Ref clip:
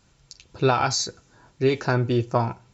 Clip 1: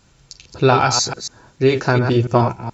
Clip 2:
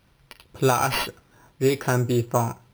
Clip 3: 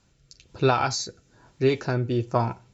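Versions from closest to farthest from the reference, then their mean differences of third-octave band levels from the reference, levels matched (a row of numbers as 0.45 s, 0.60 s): 3, 1, 2; 1.5 dB, 3.5 dB, 6.0 dB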